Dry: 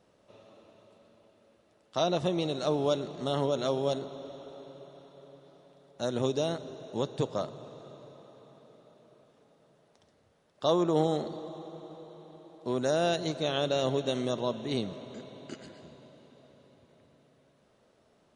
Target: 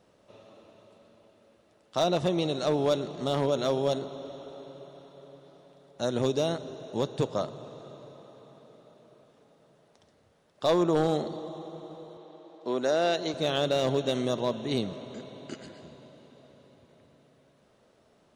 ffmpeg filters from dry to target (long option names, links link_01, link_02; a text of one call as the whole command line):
ffmpeg -i in.wav -filter_complex "[0:a]asoftclip=type=hard:threshold=-19.5dB,asettb=1/sr,asplit=3[link_01][link_02][link_03];[link_01]atrim=end=12.174[link_04];[link_02]atrim=start=12.17:end=13.34,asetpts=PTS-STARTPTS,afade=type=in:duration=0.004:curve=qsin,afade=type=out:start_time=1.166:duration=0.004:curve=qsin,highpass=260,lowpass=6300[link_05];[link_03]atrim=start=13.336[link_06];[link_04][link_05]acrossfade=duration=0.004:curve1=hsin:curve2=qsin[link_07];[link_07][link_06]acrossfade=duration=0.004:curve1=qsin:curve2=hsin,volume=2.5dB" out.wav